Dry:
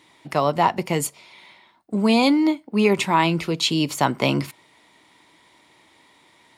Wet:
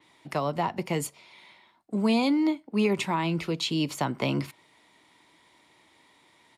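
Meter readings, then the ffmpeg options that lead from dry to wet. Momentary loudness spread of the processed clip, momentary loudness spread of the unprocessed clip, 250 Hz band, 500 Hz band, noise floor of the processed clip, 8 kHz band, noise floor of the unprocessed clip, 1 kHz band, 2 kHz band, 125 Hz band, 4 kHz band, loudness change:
9 LU, 9 LU, −5.5 dB, −7.0 dB, −62 dBFS, −8.5 dB, −57 dBFS, −9.5 dB, −8.0 dB, −5.0 dB, −8.0 dB, −7.0 dB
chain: -filter_complex "[0:a]acrossover=split=310[link_01][link_02];[link_02]acompressor=threshold=-20dB:ratio=5[link_03];[link_01][link_03]amix=inputs=2:normalize=0,aresample=32000,aresample=44100,adynamicequalizer=threshold=0.00631:dfrequency=5200:dqfactor=0.7:tfrequency=5200:tqfactor=0.7:attack=5:release=100:ratio=0.375:range=2:mode=cutabove:tftype=highshelf,volume=-5dB"

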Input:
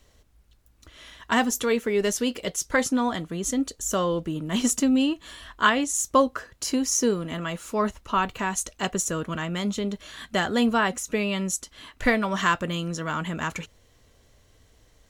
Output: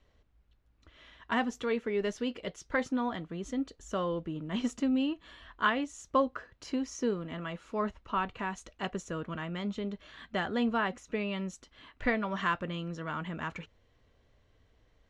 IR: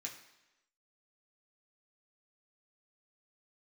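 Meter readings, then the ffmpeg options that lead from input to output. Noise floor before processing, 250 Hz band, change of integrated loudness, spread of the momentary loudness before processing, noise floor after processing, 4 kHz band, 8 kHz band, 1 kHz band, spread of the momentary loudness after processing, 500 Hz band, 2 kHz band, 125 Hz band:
−60 dBFS, −7.5 dB, −8.5 dB, 9 LU, −68 dBFS, −11.0 dB, −22.0 dB, −7.5 dB, 9 LU, −7.5 dB, −8.0 dB, −7.5 dB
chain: -af "lowpass=3200,volume=-7.5dB"

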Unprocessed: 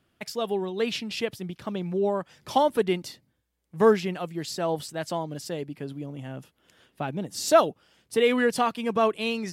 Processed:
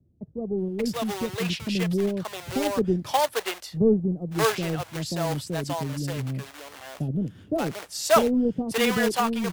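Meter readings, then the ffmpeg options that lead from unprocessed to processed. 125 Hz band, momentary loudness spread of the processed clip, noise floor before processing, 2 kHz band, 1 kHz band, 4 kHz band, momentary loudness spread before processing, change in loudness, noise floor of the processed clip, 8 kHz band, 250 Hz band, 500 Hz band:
+7.5 dB, 10 LU, −73 dBFS, +1.5 dB, −0.5 dB, +2.0 dB, 15 LU, +0.5 dB, −50 dBFS, +3.5 dB, +4.5 dB, −1.0 dB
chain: -filter_complex "[0:a]equalizer=frequency=78:width_type=o:width=2.5:gain=12.5,acrossover=split=110|1200[link_01][link_02][link_03];[link_02]acrusher=bits=2:mode=log:mix=0:aa=0.000001[link_04];[link_01][link_04][link_03]amix=inputs=3:normalize=0,acrossover=split=490[link_05][link_06];[link_06]adelay=580[link_07];[link_05][link_07]amix=inputs=2:normalize=0"

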